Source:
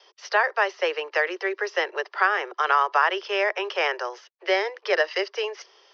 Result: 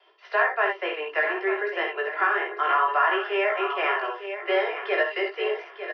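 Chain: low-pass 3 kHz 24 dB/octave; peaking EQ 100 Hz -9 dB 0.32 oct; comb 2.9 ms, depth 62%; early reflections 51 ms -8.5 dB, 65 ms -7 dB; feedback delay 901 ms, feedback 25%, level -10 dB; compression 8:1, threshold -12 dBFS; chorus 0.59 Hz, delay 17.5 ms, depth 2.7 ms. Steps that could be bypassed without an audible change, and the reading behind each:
peaking EQ 100 Hz: input has nothing below 300 Hz

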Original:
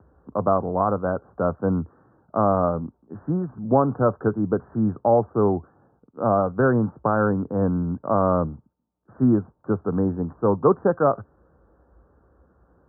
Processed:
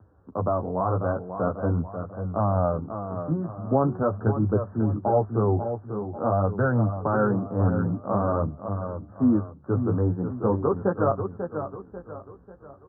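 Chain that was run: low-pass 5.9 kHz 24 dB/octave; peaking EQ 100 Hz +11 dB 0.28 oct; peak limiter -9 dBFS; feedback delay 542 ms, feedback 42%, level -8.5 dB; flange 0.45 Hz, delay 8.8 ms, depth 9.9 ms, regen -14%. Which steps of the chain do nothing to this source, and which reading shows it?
low-pass 5.9 kHz: input has nothing above 1.6 kHz

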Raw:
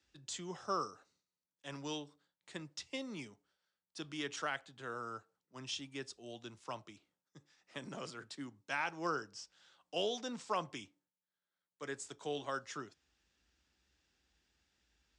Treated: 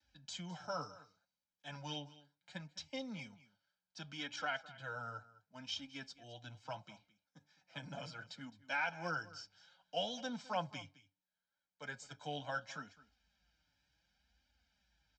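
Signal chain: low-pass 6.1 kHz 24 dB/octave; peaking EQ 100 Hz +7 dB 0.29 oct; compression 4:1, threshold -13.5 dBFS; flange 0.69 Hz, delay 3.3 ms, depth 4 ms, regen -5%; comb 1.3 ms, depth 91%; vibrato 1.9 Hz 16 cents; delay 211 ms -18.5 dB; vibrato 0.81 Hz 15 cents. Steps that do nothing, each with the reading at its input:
compression, threshold -13.5 dBFS: peak at its input -22.5 dBFS

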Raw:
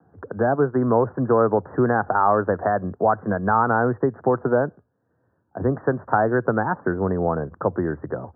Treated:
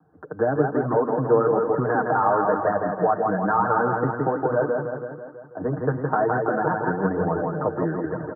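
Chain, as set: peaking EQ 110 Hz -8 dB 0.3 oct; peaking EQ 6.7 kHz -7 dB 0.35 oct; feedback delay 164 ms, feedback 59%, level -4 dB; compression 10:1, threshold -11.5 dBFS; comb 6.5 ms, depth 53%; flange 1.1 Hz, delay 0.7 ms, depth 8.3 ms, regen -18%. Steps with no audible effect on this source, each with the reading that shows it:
peaking EQ 6.7 kHz: input has nothing above 1.8 kHz

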